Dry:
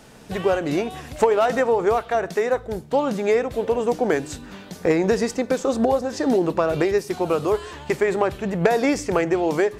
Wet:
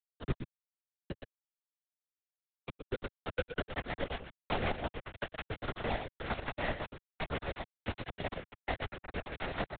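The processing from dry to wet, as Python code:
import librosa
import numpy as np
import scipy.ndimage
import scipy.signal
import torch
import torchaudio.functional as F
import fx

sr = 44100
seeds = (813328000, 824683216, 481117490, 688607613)

p1 = fx.low_shelf(x, sr, hz=400.0, db=-4.0)
p2 = p1 + 0.35 * np.pad(p1, (int(6.7 * sr / 1000.0), 0))[:len(p1)]
p3 = fx.over_compress(p2, sr, threshold_db=-20.0, ratio=-0.5)
p4 = fx.gate_flip(p3, sr, shuts_db=-26.0, range_db=-25)
p5 = fx.filter_sweep_lowpass(p4, sr, from_hz=220.0, to_hz=810.0, start_s=1.77, end_s=4.04, q=3.0)
p6 = fx.quant_dither(p5, sr, seeds[0], bits=6, dither='none')
p7 = p6 + fx.echo_single(p6, sr, ms=115, db=-6.5, dry=0)
p8 = fx.rotary(p7, sr, hz=5.5)
p9 = fx.lpc_vocoder(p8, sr, seeds[1], excitation='whisper', order=10)
p10 = fx.band_squash(p9, sr, depth_pct=40)
y = p10 * librosa.db_to_amplitude(9.0)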